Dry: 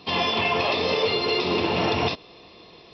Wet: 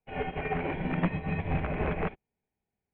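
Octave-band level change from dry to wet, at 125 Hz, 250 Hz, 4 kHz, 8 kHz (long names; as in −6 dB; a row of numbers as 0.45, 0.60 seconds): +1.5 dB, −4.0 dB, −27.0 dB, can't be measured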